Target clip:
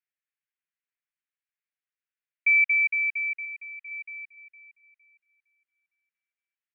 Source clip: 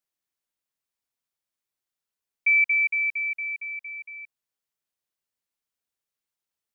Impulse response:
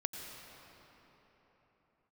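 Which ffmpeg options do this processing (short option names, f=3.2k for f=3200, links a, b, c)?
-filter_complex "[0:a]asuperpass=centerf=2000:order=4:qfactor=1.6,asettb=1/sr,asplit=3[a][b][c];[a]atrim=end=3.454[d];[b]atrim=start=3.45:end=3.88,asetpts=PTS-STARTPTS,afade=t=in:d=0.004:c=qsin,afade=t=out:st=0.426:d=0.004:c=qsin,aecho=1:1:1.6:0.7,atrim=end_sample=18963[e];[c]atrim=start=3.876[f];[d][e]acrossfade=d=0.004:c1=hsin:c2=qsin[g];[g][f]acrossfade=d=0.004:c1=qsin:c2=hsin,asplit=2[h][i];[i]adelay=460,lowpass=f=2.1k:p=1,volume=-9dB,asplit=2[j][k];[k]adelay=460,lowpass=f=2.1k:p=1,volume=0.43,asplit=2[l][m];[m]adelay=460,lowpass=f=2.1k:p=1,volume=0.43,asplit=2[n][o];[o]adelay=460,lowpass=f=2.1k:p=1,volume=0.43,asplit=2[p][q];[q]adelay=460,lowpass=f=2.1k:p=1,volume=0.43[r];[h][j][l][n][p][r]amix=inputs=6:normalize=0"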